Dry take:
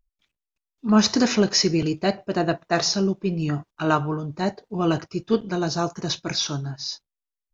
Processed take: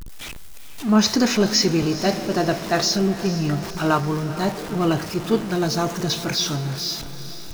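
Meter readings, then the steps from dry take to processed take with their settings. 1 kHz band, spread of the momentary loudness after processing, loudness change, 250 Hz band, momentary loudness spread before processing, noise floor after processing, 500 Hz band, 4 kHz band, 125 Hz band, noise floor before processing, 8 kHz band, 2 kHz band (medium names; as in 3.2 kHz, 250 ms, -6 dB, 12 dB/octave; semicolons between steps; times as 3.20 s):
+2.0 dB, 13 LU, +2.0 dB, +2.0 dB, 10 LU, -34 dBFS, +2.0 dB, +2.5 dB, +2.5 dB, under -85 dBFS, no reading, +2.5 dB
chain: jump at every zero crossing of -27.5 dBFS; echo that smears into a reverb 459 ms, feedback 57%, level -13 dB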